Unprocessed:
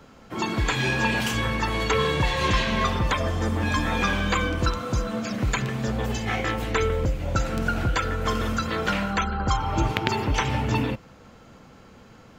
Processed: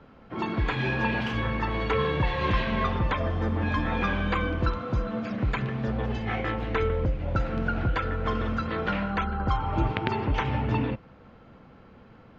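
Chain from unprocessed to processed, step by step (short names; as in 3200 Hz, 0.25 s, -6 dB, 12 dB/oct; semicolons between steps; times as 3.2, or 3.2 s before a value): air absorption 310 m; gain -1.5 dB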